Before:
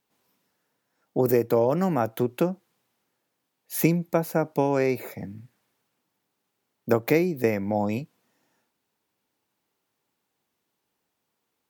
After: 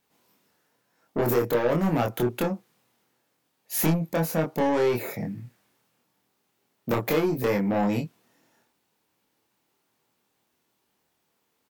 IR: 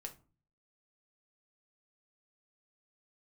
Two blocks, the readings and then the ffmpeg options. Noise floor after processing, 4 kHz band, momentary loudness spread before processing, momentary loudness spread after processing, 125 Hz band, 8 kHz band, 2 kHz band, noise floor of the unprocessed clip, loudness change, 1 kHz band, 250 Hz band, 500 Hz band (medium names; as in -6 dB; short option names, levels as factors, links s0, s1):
-74 dBFS, +5.0 dB, 12 LU, 11 LU, 0.0 dB, +3.0 dB, +0.5 dB, -79 dBFS, -1.0 dB, 0.0 dB, -0.5 dB, -1.5 dB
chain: -filter_complex "[0:a]asoftclip=type=tanh:threshold=0.0668,asplit=2[s0][s1];[s1]adelay=25,volume=0.75[s2];[s0][s2]amix=inputs=2:normalize=0,volume=1.41"